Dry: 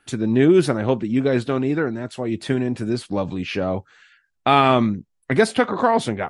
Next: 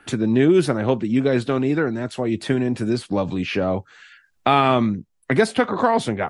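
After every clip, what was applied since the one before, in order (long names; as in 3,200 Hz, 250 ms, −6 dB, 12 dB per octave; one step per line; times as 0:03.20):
multiband upward and downward compressor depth 40%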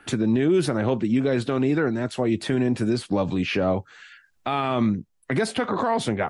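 brickwall limiter −13 dBFS, peak gain reduction 10.5 dB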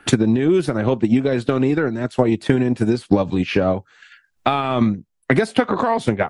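transient designer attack +9 dB, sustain −6 dB
level +2.5 dB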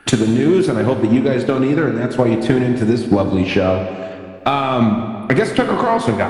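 in parallel at −4.5 dB: hard clipping −12.5 dBFS, distortion −11 dB
on the sum: convolution reverb RT60 2.3 s, pre-delay 22 ms, DRR 5 dB
level −1.5 dB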